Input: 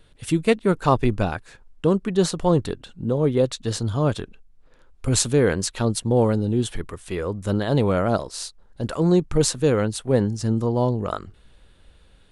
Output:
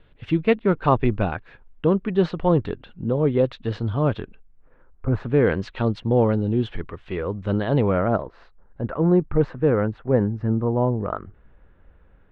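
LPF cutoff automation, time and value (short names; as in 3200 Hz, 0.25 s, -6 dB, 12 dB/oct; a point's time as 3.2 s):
LPF 24 dB/oct
4.21 s 3000 Hz
5.14 s 1500 Hz
5.46 s 3100 Hz
7.65 s 3100 Hz
8.28 s 1900 Hz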